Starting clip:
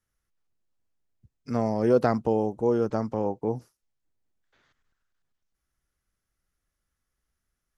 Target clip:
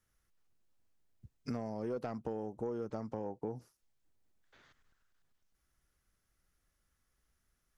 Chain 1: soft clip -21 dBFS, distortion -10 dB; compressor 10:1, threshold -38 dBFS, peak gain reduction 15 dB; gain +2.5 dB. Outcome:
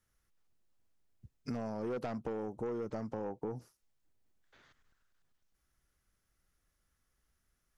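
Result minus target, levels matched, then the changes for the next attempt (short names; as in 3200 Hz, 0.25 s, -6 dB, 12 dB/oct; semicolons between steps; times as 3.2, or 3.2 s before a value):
soft clip: distortion +10 dB
change: soft clip -12.5 dBFS, distortion -19 dB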